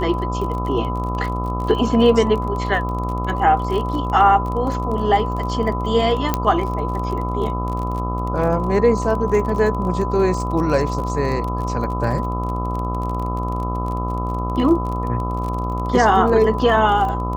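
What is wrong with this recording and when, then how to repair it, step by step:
buzz 60 Hz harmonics 22 -24 dBFS
crackle 31 per s -26 dBFS
whine 1 kHz -26 dBFS
6.34 s: pop -4 dBFS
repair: de-click; band-stop 1 kHz, Q 30; de-hum 60 Hz, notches 22

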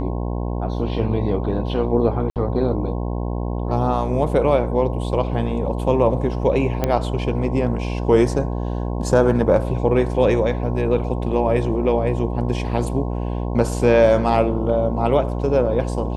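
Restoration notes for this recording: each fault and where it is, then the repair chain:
buzz 60 Hz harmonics 18 -24 dBFS
2.30–2.36 s: dropout 58 ms
6.84 s: pop -7 dBFS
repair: de-click; de-hum 60 Hz, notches 18; interpolate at 2.30 s, 58 ms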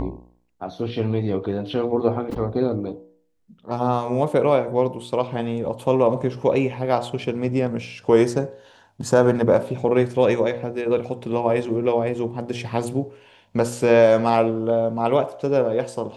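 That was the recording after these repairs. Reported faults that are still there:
nothing left

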